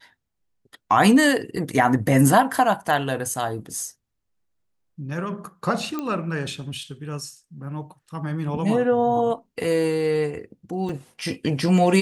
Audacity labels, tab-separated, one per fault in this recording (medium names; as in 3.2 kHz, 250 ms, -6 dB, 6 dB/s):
5.990000	5.990000	pop -15 dBFS
10.890000	10.890000	dropout 2.5 ms